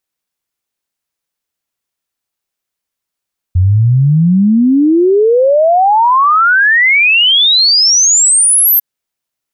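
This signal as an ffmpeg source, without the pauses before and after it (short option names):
-f lavfi -i "aevalsrc='0.531*clip(min(t,5.25-t)/0.01,0,1)*sin(2*PI*87*5.25/log(13000/87)*(exp(log(13000/87)*t/5.25)-1))':d=5.25:s=44100"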